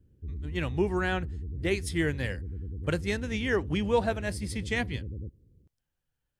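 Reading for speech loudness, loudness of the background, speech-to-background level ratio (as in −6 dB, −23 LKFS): −31.0 LKFS, −39.0 LKFS, 8.0 dB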